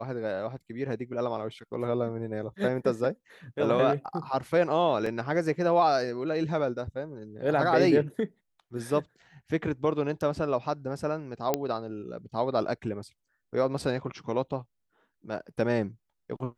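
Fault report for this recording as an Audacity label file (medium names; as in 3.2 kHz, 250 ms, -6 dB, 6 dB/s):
5.060000	5.060000	dropout 3.8 ms
11.540000	11.540000	pop -10 dBFS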